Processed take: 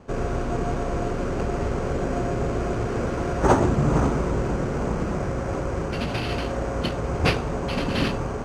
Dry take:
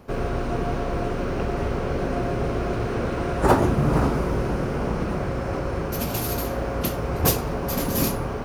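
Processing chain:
decimation without filtering 6×
high-frequency loss of the air 88 metres

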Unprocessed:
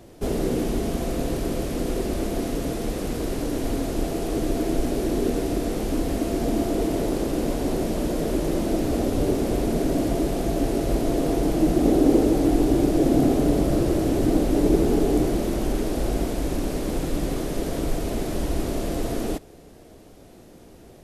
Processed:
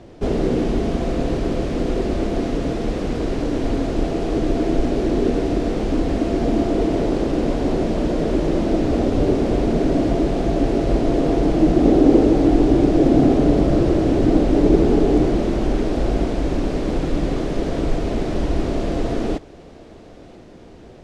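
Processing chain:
high-frequency loss of the air 120 metres
feedback echo with a high-pass in the loop 989 ms, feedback 68%, level −22.5 dB
level +5 dB

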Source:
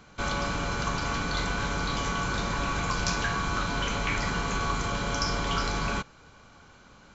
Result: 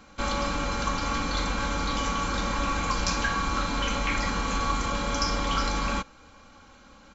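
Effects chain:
comb filter 3.7 ms, depth 63%

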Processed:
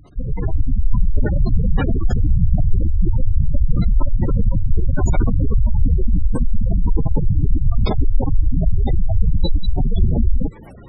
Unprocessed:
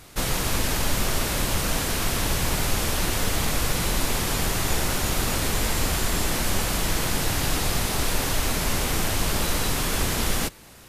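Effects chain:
gate on every frequency bin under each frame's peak −10 dB strong
automatic gain control gain up to 7 dB
level +6 dB

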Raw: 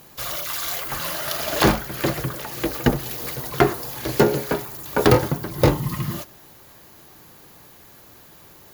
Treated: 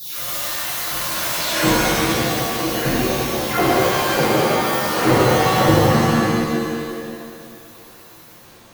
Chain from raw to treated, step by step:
every frequency bin delayed by itself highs early, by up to 384 ms
regular buffer underruns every 0.41 s, samples 2,048, repeat, from 0:00.71
reverb with rising layers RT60 1.9 s, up +7 semitones, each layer −2 dB, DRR −11 dB
level −8.5 dB

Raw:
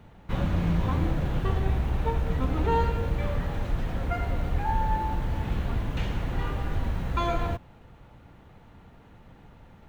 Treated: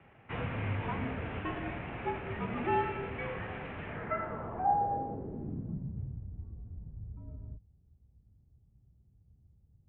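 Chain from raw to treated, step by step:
low-pass filter sweep 2,500 Hz → 130 Hz, 0:03.84–0:06.31
single-sideband voice off tune −68 Hz 160–3,300 Hz
level −5 dB

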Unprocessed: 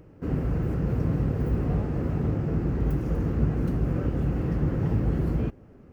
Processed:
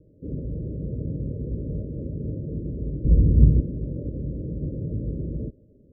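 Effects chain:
0:03.04–0:03.60: spectral tilt −4 dB per octave
Chebyshev low-pass filter 620 Hz, order 10
level −4 dB

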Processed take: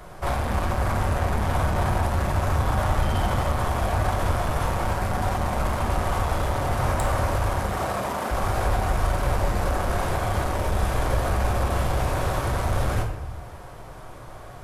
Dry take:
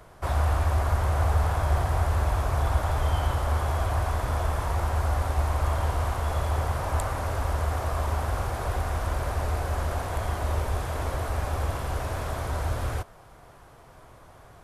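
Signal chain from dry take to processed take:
soft clipping −26.5 dBFS, distortion −10 dB
0:07.51–0:08.30: high-pass filter 80 Hz → 240 Hz 24 dB per octave
rectangular room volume 320 cubic metres, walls mixed, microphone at 1 metre
level +6 dB

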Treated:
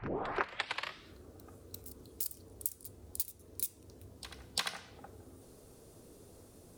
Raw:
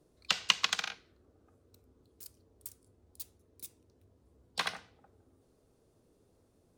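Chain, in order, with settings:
turntable start at the beginning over 1.14 s
parametric band 15,000 Hz +9 dB 1.6 octaves
downward compressor 8 to 1, threshold −44 dBFS, peak gain reduction 23 dB
on a send: backwards echo 346 ms −14.5 dB
on the sum: level +11.5 dB

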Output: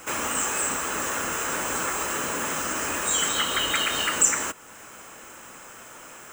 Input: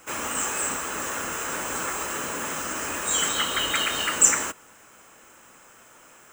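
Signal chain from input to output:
downward compressor 1.5 to 1, threshold −42 dBFS, peak gain reduction 11 dB
level +7.5 dB

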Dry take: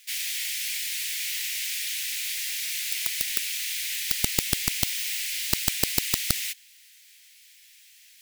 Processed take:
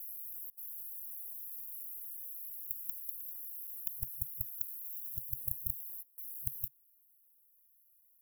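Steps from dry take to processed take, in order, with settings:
slices reordered back to front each 167 ms, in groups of 4
brick-wall band-stop 130–11,000 Hz
level −9 dB

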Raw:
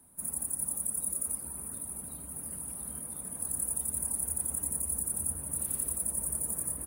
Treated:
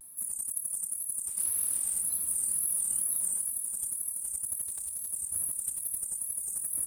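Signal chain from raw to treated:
low-pass filter 12,000 Hz 12 dB per octave
first-order pre-emphasis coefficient 0.9
compressor whose output falls as the input rises −41 dBFS, ratio −1
0:01.26–0:01.99: noise that follows the level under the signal 23 dB
tape wow and flutter 150 cents
0:04.65–0:05.11: hard clipping −38.5 dBFS, distortion −24 dB
on a send: feedback delay with all-pass diffusion 499 ms, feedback 53%, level −10 dB
on the sum: level +6.5 dB

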